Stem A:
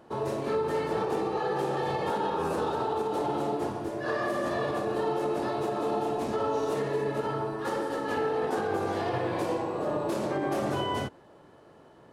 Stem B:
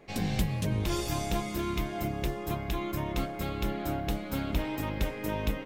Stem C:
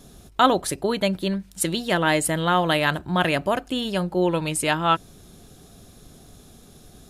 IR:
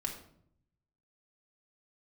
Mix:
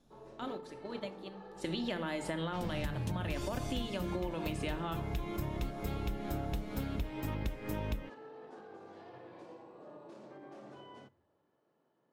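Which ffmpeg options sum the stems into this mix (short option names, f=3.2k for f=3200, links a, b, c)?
-filter_complex "[0:a]volume=-17.5dB,asplit=2[a][b];[b]volume=-20dB[c];[1:a]adelay=2450,volume=-1.5dB[d];[2:a]acrossover=split=440|6500[e][f][g];[e]acompressor=threshold=-29dB:ratio=4[h];[f]acompressor=threshold=-26dB:ratio=4[i];[g]acompressor=threshold=-46dB:ratio=4[j];[h][i][j]amix=inputs=3:normalize=0,volume=-7dB,afade=t=in:st=1.53:d=0.21:silence=0.237137,asplit=3[k][l][m];[l]volume=-3.5dB[n];[m]apad=whole_len=357238[o];[d][o]sidechaincompress=threshold=-34dB:ratio=8:attack=37:release=171[p];[a][k]amix=inputs=2:normalize=0,highpass=180,lowpass=6.7k,alimiter=level_in=2.5dB:limit=-24dB:level=0:latency=1,volume=-2.5dB,volume=0dB[q];[3:a]atrim=start_sample=2205[r];[c][n]amix=inputs=2:normalize=0[s];[s][r]afir=irnorm=-1:irlink=0[t];[p][q][t]amix=inputs=3:normalize=0,lowshelf=f=170:g=8,agate=range=-6dB:threshold=-39dB:ratio=16:detection=peak,acompressor=threshold=-33dB:ratio=6"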